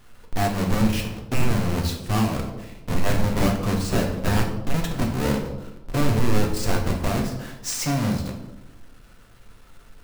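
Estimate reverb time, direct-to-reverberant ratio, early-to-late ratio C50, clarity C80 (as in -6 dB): 0.95 s, 1.5 dB, 6.5 dB, 9.5 dB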